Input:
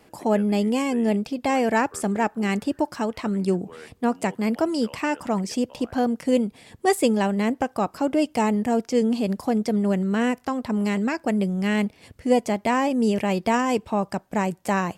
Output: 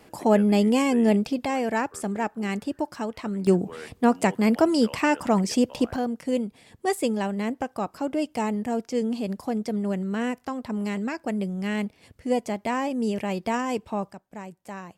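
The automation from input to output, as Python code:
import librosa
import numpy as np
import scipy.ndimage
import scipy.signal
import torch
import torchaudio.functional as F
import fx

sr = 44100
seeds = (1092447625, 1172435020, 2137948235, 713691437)

y = fx.gain(x, sr, db=fx.steps((0.0, 2.0), (1.45, -4.5), (3.47, 3.0), (5.96, -5.0), (14.12, -15.0)))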